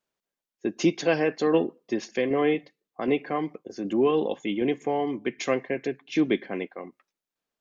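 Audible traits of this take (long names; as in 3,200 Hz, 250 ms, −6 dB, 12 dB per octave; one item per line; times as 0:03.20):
tremolo saw down 1.3 Hz, depth 40%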